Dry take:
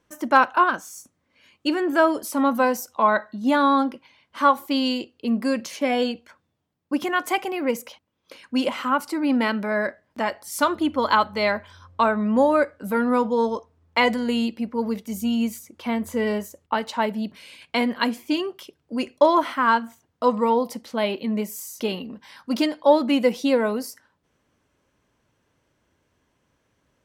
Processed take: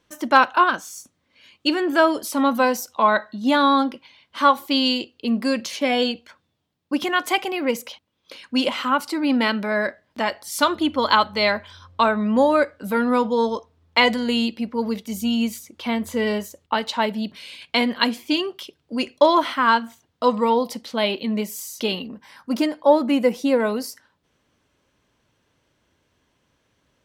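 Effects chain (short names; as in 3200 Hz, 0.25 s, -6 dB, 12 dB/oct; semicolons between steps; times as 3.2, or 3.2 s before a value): bell 3700 Hz +7.5 dB 1.1 oct, from 22.08 s -4.5 dB, from 23.6 s +5.5 dB; gain +1 dB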